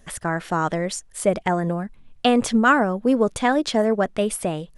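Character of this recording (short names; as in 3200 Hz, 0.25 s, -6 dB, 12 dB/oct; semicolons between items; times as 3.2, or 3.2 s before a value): noise floor -51 dBFS; spectral tilt -5.0 dB/oct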